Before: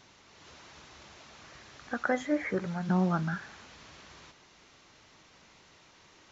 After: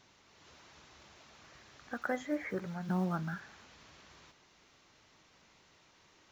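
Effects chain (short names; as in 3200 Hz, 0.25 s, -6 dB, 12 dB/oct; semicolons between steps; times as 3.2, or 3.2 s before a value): block floating point 7-bit; gain -6 dB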